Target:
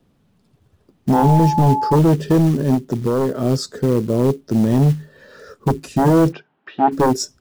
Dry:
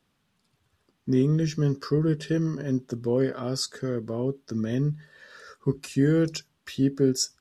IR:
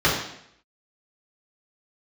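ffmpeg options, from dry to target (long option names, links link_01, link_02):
-filter_complex "[0:a]acrossover=split=690|890[link_01][link_02][link_03];[link_01]aeval=exprs='0.282*sin(PI/2*2.82*val(0)/0.282)':channel_layout=same[link_04];[link_04][link_02][link_03]amix=inputs=3:normalize=0,acrusher=bits=6:mode=log:mix=0:aa=0.000001,asettb=1/sr,asplit=3[link_05][link_06][link_07];[link_05]atrim=end=1.144[link_08];[link_06]atrim=start=1.14:end=1.96,asetpts=PTS-STARTPTS,afade=type=in:duration=0.004:curve=qsin,afade=type=out:start_time=0.816:duration=0.004:curve=qsin,aeval=exprs='val(0)+0.112*sin(2*PI*860*n/s)':channel_layout=same[link_09];[link_07]atrim=start=1.956[link_10];[link_08][link_09]acrossfade=duration=0.004:curve1=hsin:curve2=qsin[link_11];[link_11][link_10]acrossfade=duration=0.004:curve1=qsin:curve2=hsin,asettb=1/sr,asplit=3[link_12][link_13][link_14];[link_12]atrim=end=2.744[link_15];[link_13]atrim=start=2.74:end=3.4,asetpts=PTS-STARTPTS,afade=type=in:duration=0.004:curve=qsin,afade=type=out:start_time=0.656:duration=0.004:curve=qsin,acompressor=threshold=-17dB:ratio=6[link_16];[link_14]atrim=start=3.396[link_17];[link_15][link_16]acrossfade=duration=0.004:curve1=hsin:curve2=qsin[link_18];[link_18][link_17]acrossfade=duration=0.004:curve1=qsin:curve2=hsin,asplit=3[link_19][link_20][link_21];[link_19]afade=type=out:start_time=6.31:duration=0.02[link_22];[link_20]highpass=340,equalizer=frequency=540:width_type=q:width=4:gain=-5,equalizer=frequency=810:width_type=q:width=4:gain=9,equalizer=frequency=1500:width_type=q:width=4:gain=7,lowpass=frequency=3000:width=0.5412,lowpass=frequency=3000:width=1.3066,afade=type=in:start_time=6.31:duration=0.02,afade=type=out:start_time=6.91:duration=0.02[link_23];[link_21]afade=type=in:start_time=6.91:duration=0.02[link_24];[link_22][link_23][link_24]amix=inputs=3:normalize=0,volume=1.5dB"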